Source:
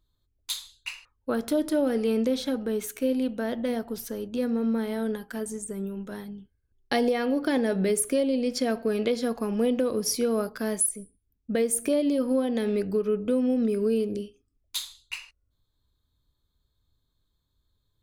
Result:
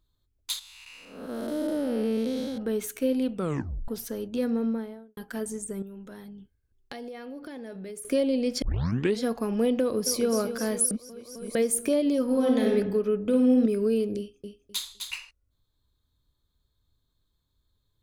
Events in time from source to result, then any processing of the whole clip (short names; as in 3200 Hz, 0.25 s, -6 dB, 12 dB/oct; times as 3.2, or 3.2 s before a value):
0.59–2.58 time blur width 0.315 s
3.33 tape stop 0.55 s
4.5–5.17 studio fade out
5.82–8.05 compressor 3:1, threshold -42 dBFS
8.62 tape start 0.58 s
9.8–10.32 echo throw 0.26 s, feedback 70%, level -9.5 dB
10.91–11.55 reverse
12.24–12.69 reverb throw, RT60 0.99 s, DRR -0.5 dB
13.23–13.66 flutter echo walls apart 9.5 m, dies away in 0.54 s
14.18–15.13 feedback echo 0.256 s, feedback 20%, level -5.5 dB